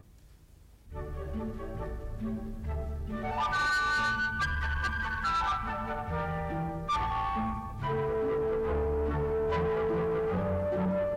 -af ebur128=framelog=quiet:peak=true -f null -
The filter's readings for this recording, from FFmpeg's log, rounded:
Integrated loudness:
  I:         -31.5 LUFS
  Threshold: -41.8 LUFS
Loudness range:
  LRA:         5.0 LU
  Threshold: -51.5 LUFS
  LRA low:   -35.0 LUFS
  LRA high:  -30.0 LUFS
True peak:
  Peak:      -25.6 dBFS